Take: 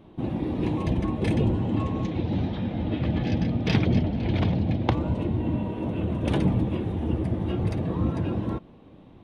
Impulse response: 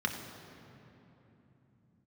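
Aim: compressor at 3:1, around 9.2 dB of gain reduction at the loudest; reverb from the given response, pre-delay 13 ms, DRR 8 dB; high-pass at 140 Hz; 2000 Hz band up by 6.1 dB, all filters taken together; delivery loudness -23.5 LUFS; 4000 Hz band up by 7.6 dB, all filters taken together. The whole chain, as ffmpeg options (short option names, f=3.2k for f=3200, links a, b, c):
-filter_complex "[0:a]highpass=140,equalizer=f=2k:t=o:g=5,equalizer=f=4k:t=o:g=8,acompressor=threshold=-31dB:ratio=3,asplit=2[a][b];[1:a]atrim=start_sample=2205,adelay=13[c];[b][c]afir=irnorm=-1:irlink=0,volume=-15dB[d];[a][d]amix=inputs=2:normalize=0,volume=9dB"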